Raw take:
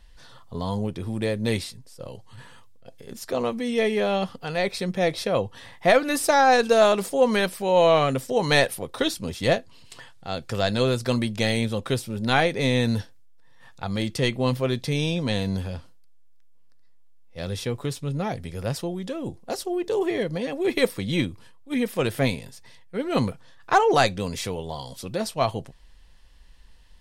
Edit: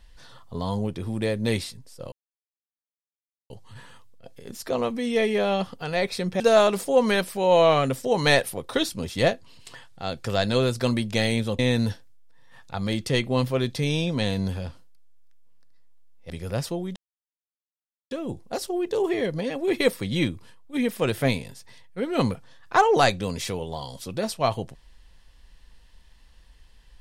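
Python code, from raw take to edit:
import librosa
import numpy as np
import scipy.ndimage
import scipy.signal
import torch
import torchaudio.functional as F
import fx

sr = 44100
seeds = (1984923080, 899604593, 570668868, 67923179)

y = fx.edit(x, sr, fx.insert_silence(at_s=2.12, length_s=1.38),
    fx.cut(start_s=5.02, length_s=1.63),
    fx.cut(start_s=11.84, length_s=0.84),
    fx.cut(start_s=17.39, length_s=1.03),
    fx.insert_silence(at_s=19.08, length_s=1.15), tone=tone)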